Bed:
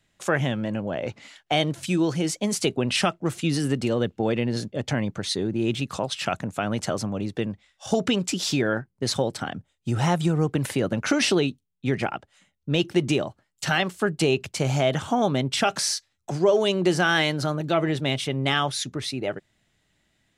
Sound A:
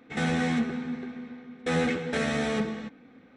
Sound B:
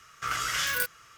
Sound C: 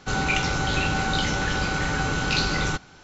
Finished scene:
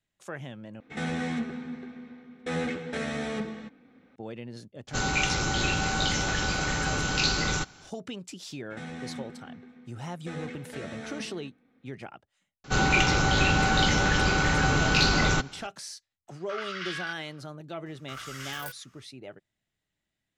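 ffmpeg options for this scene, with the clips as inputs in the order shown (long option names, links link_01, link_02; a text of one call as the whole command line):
ffmpeg -i bed.wav -i cue0.wav -i cue1.wav -i cue2.wav -filter_complex "[1:a]asplit=2[link_01][link_02];[3:a]asplit=2[link_03][link_04];[2:a]asplit=2[link_05][link_06];[0:a]volume=-15.5dB[link_07];[link_03]highshelf=frequency=5900:gain=11.5[link_08];[link_04]acontrast=65[link_09];[link_05]asuperpass=centerf=2300:order=8:qfactor=0.63[link_10];[link_07]asplit=2[link_11][link_12];[link_11]atrim=end=0.804[link_13];[link_01]atrim=end=3.36,asetpts=PTS-STARTPTS,volume=-4.5dB[link_14];[link_12]atrim=start=4.156[link_15];[link_08]atrim=end=3.03,asetpts=PTS-STARTPTS,volume=-4dB,afade=type=in:duration=0.004:curve=hsin,afade=type=out:start_time=3.026:duration=0.004:curve=hsin,adelay=4870[link_16];[link_02]atrim=end=3.36,asetpts=PTS-STARTPTS,volume=-13dB,afade=type=in:duration=0.004:curve=hsin,afade=type=out:start_time=3.356:duration=0.004:curve=hsin,adelay=8600[link_17];[link_09]atrim=end=3.03,asetpts=PTS-STARTPTS,volume=-5dB,afade=type=in:duration=0.004:curve=hsin,afade=type=out:start_time=3.026:duration=0.004:curve=hsin,adelay=12640[link_18];[link_10]atrim=end=1.17,asetpts=PTS-STARTPTS,volume=-5.5dB,afade=type=in:duration=0.05,afade=type=out:start_time=1.12:duration=0.05,adelay=16270[link_19];[link_06]atrim=end=1.17,asetpts=PTS-STARTPTS,volume=-11.5dB,afade=type=in:duration=0.004:curve=hsin,afade=type=out:start_time=1.166:duration=0.004:curve=hsin,adelay=17860[link_20];[link_13][link_14]acrossfade=duration=0.004:curve1=hsin:curve2=hsin[link_21];[link_21][link_15]acrossfade=duration=0.004:curve1=hsin:curve2=hsin[link_22];[link_22][link_16][link_17][link_18][link_19][link_20]amix=inputs=6:normalize=0" out.wav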